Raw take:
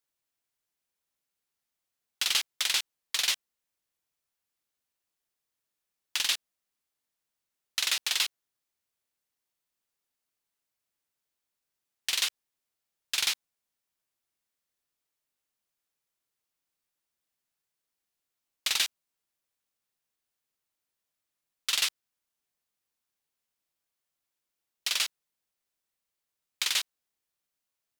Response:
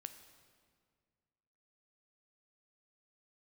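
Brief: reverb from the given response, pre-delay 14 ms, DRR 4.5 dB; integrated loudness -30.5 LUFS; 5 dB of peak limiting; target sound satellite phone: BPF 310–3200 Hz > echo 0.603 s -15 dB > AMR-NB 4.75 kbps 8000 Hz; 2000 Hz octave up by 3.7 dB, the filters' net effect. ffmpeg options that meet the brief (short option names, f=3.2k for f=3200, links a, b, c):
-filter_complex "[0:a]equalizer=f=2k:t=o:g=6,alimiter=limit=-15dB:level=0:latency=1,asplit=2[a][b];[1:a]atrim=start_sample=2205,adelay=14[c];[b][c]afir=irnorm=-1:irlink=0,volume=0.5dB[d];[a][d]amix=inputs=2:normalize=0,highpass=310,lowpass=3.2k,aecho=1:1:603:0.178,volume=8.5dB" -ar 8000 -c:a libopencore_amrnb -b:a 4750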